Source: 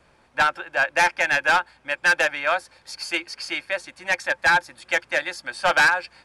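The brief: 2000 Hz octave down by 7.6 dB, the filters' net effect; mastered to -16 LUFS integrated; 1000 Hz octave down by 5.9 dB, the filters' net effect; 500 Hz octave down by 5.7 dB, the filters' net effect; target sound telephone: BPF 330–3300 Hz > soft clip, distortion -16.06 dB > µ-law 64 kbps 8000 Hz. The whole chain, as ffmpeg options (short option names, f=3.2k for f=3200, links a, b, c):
-af "highpass=330,lowpass=3.3k,equalizer=f=500:t=o:g=-4.5,equalizer=f=1k:t=o:g=-4,equalizer=f=2k:t=o:g=-8,asoftclip=threshold=-22dB,volume=15.5dB" -ar 8000 -c:a pcm_mulaw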